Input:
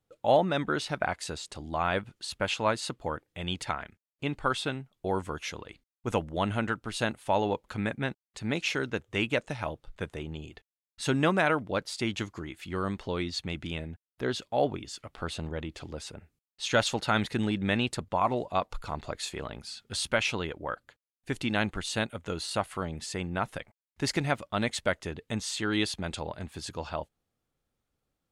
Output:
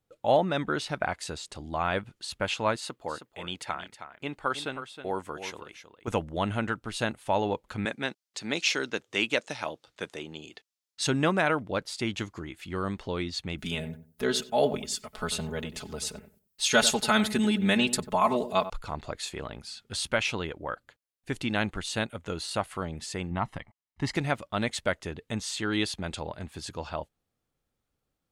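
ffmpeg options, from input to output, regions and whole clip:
-filter_complex "[0:a]asettb=1/sr,asplit=3[a][b][c];[a]atrim=end=2.764[d];[b]atrim=start=2.76:end=6.08,asetpts=PTS-STARTPTS,afade=t=in:d=0.004:c=qsin,afade=t=out:st=3.316:d=0.004:c=qsin,lowpass=f=2.1k:p=1,aemphasis=mode=production:type=bsi,aecho=1:1:317:0.299,atrim=end_sample=146412[e];[c]atrim=start=6.076[f];[d][e]acrossfade=d=0.004:c1=hsin:c2=qsin[g];[g][f]acrossfade=d=0.004:c1=qsin:c2=hsin,asettb=1/sr,asplit=3[h][i][j];[h]atrim=end=7.854[k];[i]atrim=start=7.85:end=11.07,asetpts=PTS-STARTPTS,afade=t=in:d=0.004:c=qsin,afade=t=out:st=3.216:d=0.004:c=qsin,highpass=230,equalizer=f=5.3k:w=0.81:g=9[l];[j]atrim=start=11.066[m];[k][l]acrossfade=d=0.004:c1=hsin:c2=qsin[n];[n][m]acrossfade=d=0.004:c1=qsin:c2=hsin,asettb=1/sr,asplit=3[o][p][q];[o]atrim=end=13.584[r];[p]atrim=start=13.58:end=18.7,asetpts=PTS-STARTPTS,afade=t=in:d=0.004:c=qsin,afade=t=out:st=5.116:d=0.004:c=qsin,aemphasis=mode=production:type=50fm,aecho=1:1:4.7:0.92,atrim=end_sample=225792,asplit=2[s][t];[t]adelay=93,lowpass=f=940:p=1,volume=-11dB,asplit=2[u][v];[v]adelay=93,lowpass=f=940:p=1,volume=0.24,asplit=2[w][x];[x]adelay=93,lowpass=f=940:p=1,volume=0.24[y];[s][u][w][y]amix=inputs=4:normalize=0,atrim=end_sample=225792[z];[q]atrim=start=18.696[aa];[r][z]acrossfade=d=0.004:c1=hsin:c2=qsin[ab];[ab][aa]acrossfade=d=0.004:c1=qsin:c2=hsin,asettb=1/sr,asplit=3[ac][ad][ae];[ac]atrim=end=23.314[af];[ad]atrim=start=23.31:end=24.15,asetpts=PTS-STARTPTS,afade=t=in:d=0.004:c=qsin,afade=t=out:st=0.836:d=0.004:c=qsin,lowpass=f=2.6k:p=1,aecho=1:1:1:0.58,atrim=end_sample=37044[ag];[ae]atrim=start=24.146[ah];[af][ag]acrossfade=d=0.004:c1=hsin:c2=qsin[ai];[ai][ah]acrossfade=d=0.004:c1=qsin:c2=hsin"

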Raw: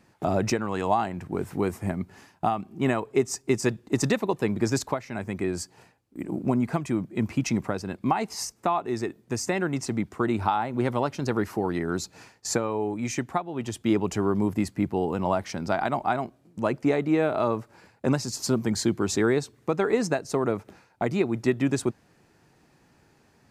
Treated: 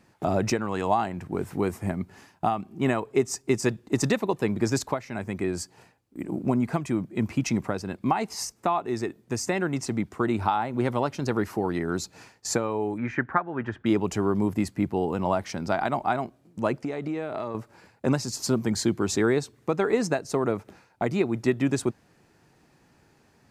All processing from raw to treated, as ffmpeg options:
-filter_complex "[0:a]asettb=1/sr,asplit=3[a][b][c];[a]atrim=end=12.984[d];[b]atrim=start=12.98:end=13.86,asetpts=PTS-STARTPTS,afade=t=in:d=0.004:c=qsin,afade=t=out:st=0.876:d=0.004:c=qsin,lowpass=f=1.6k:t=q:w=5.1,bandreject=f=720:w=18[e];[c]atrim=start=13.856[f];[d][e]acrossfade=d=0.004:c1=hsin:c2=qsin[g];[g][f]acrossfade=d=0.004:c1=qsin:c2=hsin,asettb=1/sr,asplit=3[h][i][j];[h]atrim=end=16.794[k];[i]atrim=start=16.79:end=17.55,asetpts=PTS-STARTPTS,afade=t=in:d=0.004:c=qsin,afade=t=out:st=0.756:d=0.004:c=qsin,lowpass=f=12k:w=0.5412,lowpass=f=12k:w=1.3066,equalizer=f=5.1k:t=o:w=0.28:g=3.5,acompressor=threshold=-26dB:ratio=12:attack=3.2:release=140:knee=1:detection=peak[l];[j]atrim=start=17.546[m];[k][l]acrossfade=d=0.004:c1=hsin:c2=qsin[n];[n][m]acrossfade=d=0.004:c1=qsin:c2=hsin"

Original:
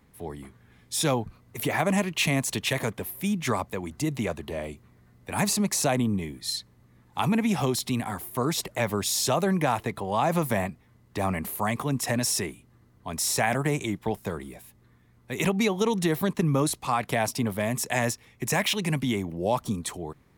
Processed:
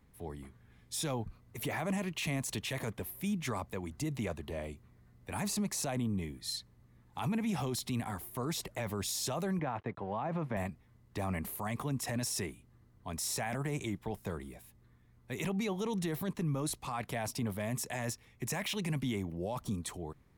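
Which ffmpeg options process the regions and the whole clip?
-filter_complex "[0:a]asettb=1/sr,asplit=3[a][b][c];[a]atrim=end=9.594[d];[b]atrim=start=9.59:end=10.57,asetpts=PTS-STARTPTS,afade=t=in:d=0.004:c=qsin,afade=t=out:st=0.976:d=0.004:c=qsin,aeval=exprs='sgn(val(0))*max(abs(val(0))-0.00299,0)':c=same,highpass=100,lowpass=2.1k[e];[c]atrim=start=10.566[f];[d][e]acrossfade=d=0.004:c1=hsin:c2=qsin[g];[g][f]acrossfade=d=0.004:c1=qsin:c2=hsin,lowshelf=f=85:g=9.5,alimiter=limit=-19.5dB:level=0:latency=1:release=12,volume=-7.5dB"

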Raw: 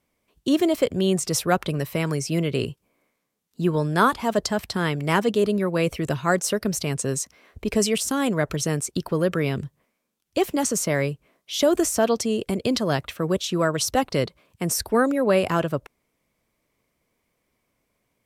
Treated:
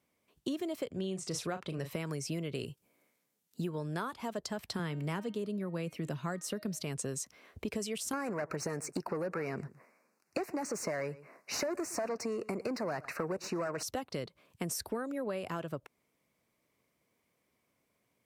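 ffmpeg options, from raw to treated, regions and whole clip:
-filter_complex "[0:a]asettb=1/sr,asplit=3[a][b][c];[a]atrim=end=0.914[d];[b]atrim=start=0.91:end=1.91,asetpts=PTS-STARTPTS,afade=t=in:d=0.004:c=qsin,afade=t=out:st=0.996:d=0.004:c=qsin,lowpass=8.7k,asplit=2[e][f];[f]adelay=37,volume=-10dB[g];[e][g]amix=inputs=2:normalize=0,atrim=end_sample=44100[h];[c]atrim=start=1.906[i];[d][h]acrossfade=d=0.004:c1=hsin:c2=qsin[j];[j][i]acrossfade=d=0.004:c1=qsin:c2=hsin,asettb=1/sr,asplit=3[k][l][m];[k]atrim=end=2.554[n];[l]atrim=start=2.55:end=3.69,asetpts=PTS-STARTPTS,afade=t=in:d=0.004:c=qsin,afade=t=out:st=1.136:d=0.004:c=qsin,highshelf=f=5.7k:g=6.5,bandreject=f=1.1k:w=9.8[o];[m]atrim=start=3.686[p];[n][o]acrossfade=d=0.004:c1=hsin:c2=qsin[q];[q][p]acrossfade=d=0.004:c1=qsin:c2=hsin,asettb=1/sr,asplit=3[r][s][t];[r]atrim=end=4.794[u];[s]atrim=start=4.79:end=6.81,asetpts=PTS-STARTPTS,afade=t=in:d=0.004:c=qsin,afade=t=out:st=2.016:d=0.004:c=qsin,highpass=f=160:t=q:w=1.9,bandreject=f=310.2:t=h:w=4,bandreject=f=620.4:t=h:w=4,bandreject=f=930.6:t=h:w=4,bandreject=f=1.2408k:t=h:w=4,bandreject=f=1.551k:t=h:w=4,bandreject=f=1.8612k:t=h:w=4,bandreject=f=2.1714k:t=h:w=4,bandreject=f=2.4816k:t=h:w=4,bandreject=f=2.7918k:t=h:w=4,bandreject=f=3.102k:t=h:w=4,bandreject=f=3.4122k:t=h:w=4,bandreject=f=3.7224k:t=h:w=4,bandreject=f=4.0326k:t=h:w=4,bandreject=f=4.3428k:t=h:w=4,bandreject=f=4.653k:t=h:w=4[v];[t]atrim=start=6.806[w];[u][v]acrossfade=d=0.004:c1=hsin:c2=qsin[x];[x][w]acrossfade=d=0.004:c1=qsin:c2=hsin,asettb=1/sr,asplit=3[y][z][aa];[y]atrim=end=8.134[ab];[z]atrim=start=8.13:end=13.83,asetpts=PTS-STARTPTS,afade=t=in:d=0.004:c=qsin,afade=t=out:st=5.696:d=0.004:c=qsin,asplit=2[ac][ad];[ad]highpass=f=720:p=1,volume=22dB,asoftclip=type=tanh:threshold=-7.5dB[ae];[ac][ae]amix=inputs=2:normalize=0,lowpass=f=2k:p=1,volume=-6dB,asuperstop=centerf=3300:order=4:qfactor=1.6,aecho=1:1:116:0.0708,atrim=end_sample=251370[af];[aa]atrim=start=13.826[ag];[ab][af]acrossfade=d=0.004:c1=hsin:c2=qsin[ah];[ah][ag]acrossfade=d=0.004:c1=qsin:c2=hsin,highpass=89,acompressor=threshold=-29dB:ratio=12,volume=-4dB"

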